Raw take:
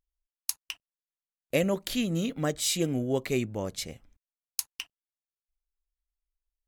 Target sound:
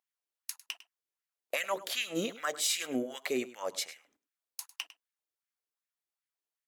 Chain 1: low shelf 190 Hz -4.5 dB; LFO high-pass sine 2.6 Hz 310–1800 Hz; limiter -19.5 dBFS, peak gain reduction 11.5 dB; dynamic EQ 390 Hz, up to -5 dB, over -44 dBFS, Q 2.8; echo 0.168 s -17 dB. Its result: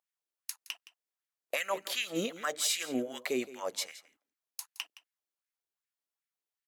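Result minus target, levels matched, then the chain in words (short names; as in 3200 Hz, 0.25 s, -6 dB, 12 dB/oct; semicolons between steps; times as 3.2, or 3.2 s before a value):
echo 66 ms late
low shelf 190 Hz -4.5 dB; LFO high-pass sine 2.6 Hz 310–1800 Hz; limiter -19.5 dBFS, peak gain reduction 11.5 dB; dynamic EQ 390 Hz, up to -5 dB, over -44 dBFS, Q 2.8; echo 0.102 s -17 dB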